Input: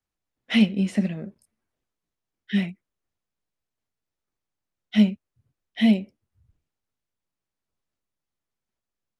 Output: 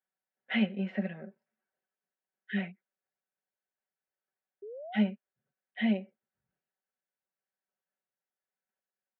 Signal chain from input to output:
loudspeaker in its box 300–2,700 Hz, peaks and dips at 330 Hz −9 dB, 490 Hz +3 dB, 750 Hz +3 dB, 1,100 Hz −6 dB, 1,600 Hz +7 dB, 2,400 Hz −3 dB
comb filter 5.3 ms, depth 68%
sound drawn into the spectrogram rise, 0:04.62–0:05.01, 390–880 Hz −37 dBFS
level −6 dB

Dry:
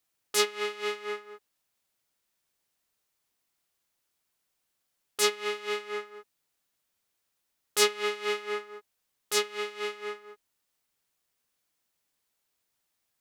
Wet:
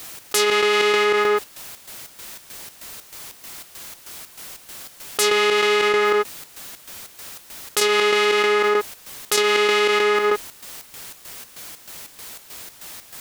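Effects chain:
square-wave tremolo 3.2 Hz, depth 65%, duty 60%
envelope flattener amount 100%
level +2 dB

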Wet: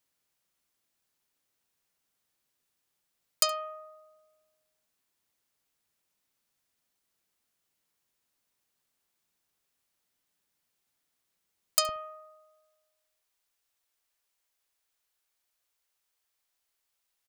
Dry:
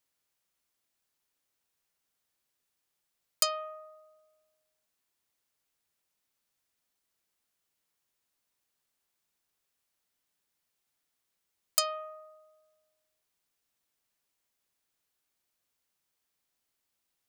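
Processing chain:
parametric band 180 Hz +2.5 dB 1.7 octaves, from 0:11.89 −13.5 dB
single-tap delay 70 ms −20 dB
level +1.5 dB

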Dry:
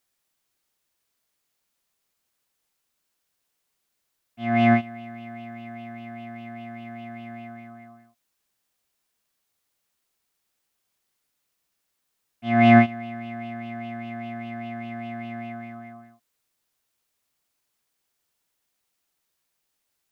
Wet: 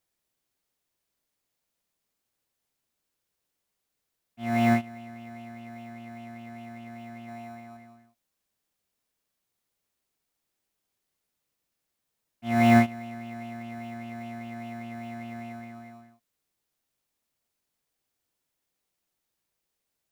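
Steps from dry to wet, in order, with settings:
0:07.28–0:07.77: parametric band 870 Hz +7 dB 0.86 octaves
in parallel at −12 dB: sample-rate reduction 1,600 Hz, jitter 0%
on the sum: level −5.5 dB

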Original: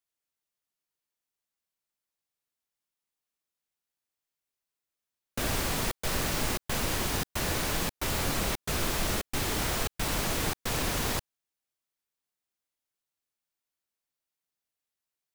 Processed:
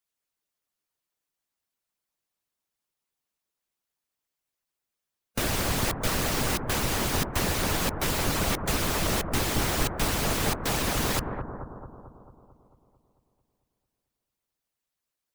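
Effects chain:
bucket-brigade delay 222 ms, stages 2,048, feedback 60%, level −4.5 dB
harmonic and percussive parts rebalanced harmonic −11 dB
level +6 dB

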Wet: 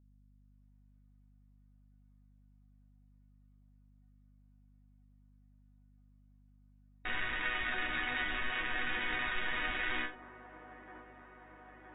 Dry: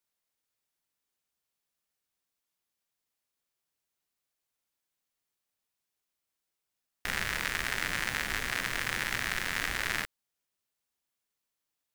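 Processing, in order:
low-pass filter 4,400 Hz 12 dB per octave
resonators tuned to a chord B3 major, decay 0.22 s
automatic gain control gain up to 10 dB
in parallel at +3 dB: brickwall limiter −36.5 dBFS, peak gain reduction 13 dB
on the sum: low-pass that shuts in the quiet parts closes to 1,500 Hz, open at −38 dBFS
mains hum 50 Hz, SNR 23 dB
delay with a band-pass on its return 968 ms, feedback 71%, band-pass 490 Hz, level −9.5 dB
AAC 16 kbit/s 16,000 Hz

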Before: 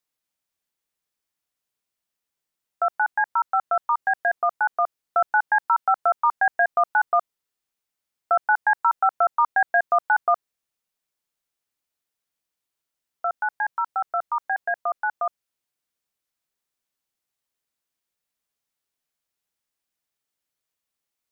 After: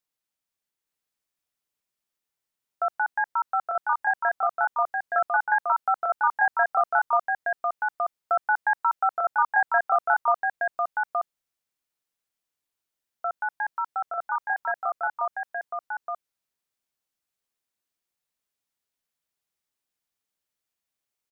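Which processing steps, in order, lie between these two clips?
single-tap delay 870 ms −3.5 dB
level −3.5 dB

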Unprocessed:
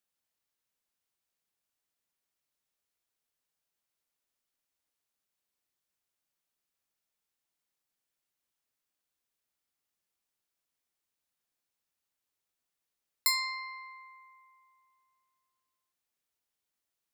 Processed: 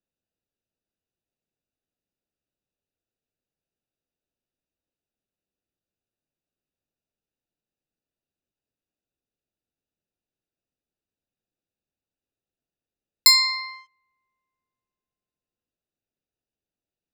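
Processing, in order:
adaptive Wiener filter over 41 samples
flat-topped bell 4,200 Hz +8.5 dB
level +7.5 dB

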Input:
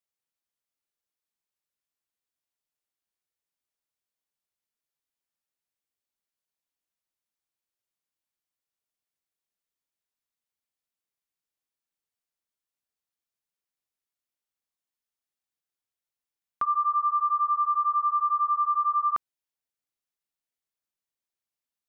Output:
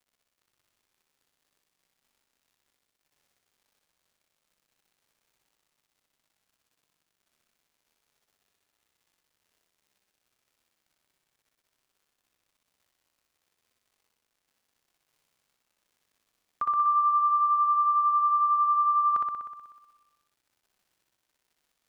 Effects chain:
surface crackle 150 per second −56 dBFS
on a send: flutter between parallel walls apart 10.6 metres, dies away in 1.2 s
on the sum: level −3 dB

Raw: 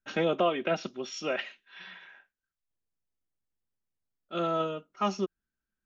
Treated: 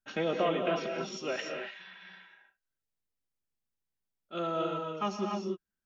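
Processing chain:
reverb whose tail is shaped and stops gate 320 ms rising, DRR 2 dB
level −4 dB

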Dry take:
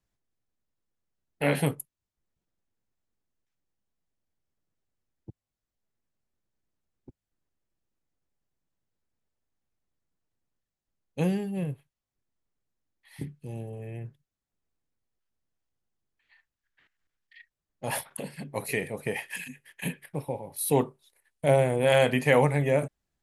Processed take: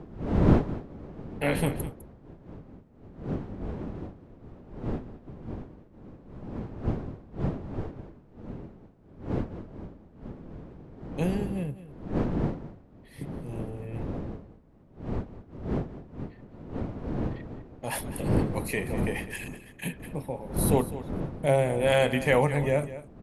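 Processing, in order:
wind on the microphone 280 Hz −32 dBFS
single-tap delay 205 ms −14.5 dB
level −1.5 dB

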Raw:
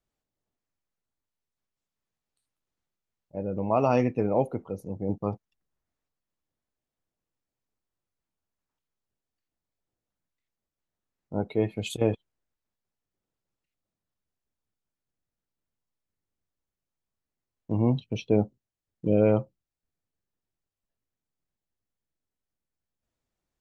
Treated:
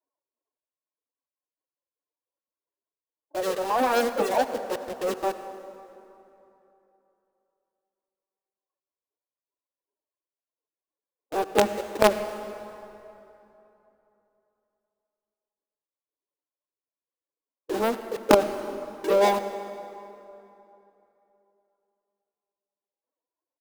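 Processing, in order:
low-pass filter 1,000 Hz 24 dB per octave
reverb reduction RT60 1.8 s
Butterworth high-pass 180 Hz 36 dB per octave
comb filter 2.3 ms, depth 95%
phase-vocoder pitch shift with formants kept +11 semitones
in parallel at −6 dB: log-companded quantiser 2 bits
on the sum: formants moved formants +3 semitones
on a send at −10.5 dB: convolution reverb RT60 3.1 s, pre-delay 67 ms
on the sum: level −1 dB

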